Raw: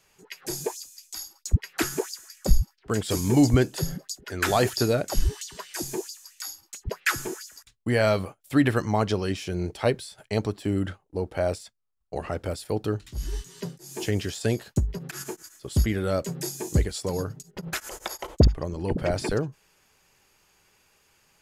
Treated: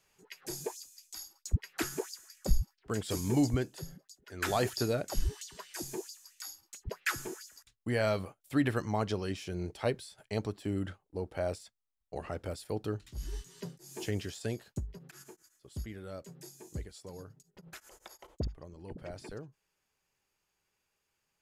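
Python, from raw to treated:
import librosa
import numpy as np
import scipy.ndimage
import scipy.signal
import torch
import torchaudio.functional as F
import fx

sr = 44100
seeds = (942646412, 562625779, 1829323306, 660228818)

y = fx.gain(x, sr, db=fx.line((3.36, -8.0), (4.14, -20.0), (4.45, -8.0), (14.13, -8.0), (15.4, -18.0)))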